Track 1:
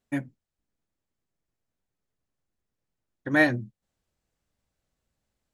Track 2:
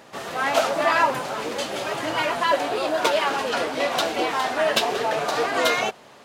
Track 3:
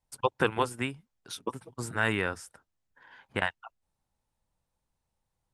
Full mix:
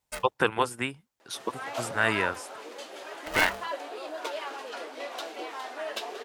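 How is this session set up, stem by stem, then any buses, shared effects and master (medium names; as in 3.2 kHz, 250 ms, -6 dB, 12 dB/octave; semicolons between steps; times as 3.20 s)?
-5.0 dB, 0.00 s, no send, tilt EQ +2.5 dB/octave; polarity switched at an audio rate 320 Hz
-14.0 dB, 1.20 s, no send, resonant low shelf 210 Hz -12.5 dB, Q 1.5
+3.0 dB, 0.00 s, no send, high-pass 41 Hz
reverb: none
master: bass shelf 260 Hz -7.5 dB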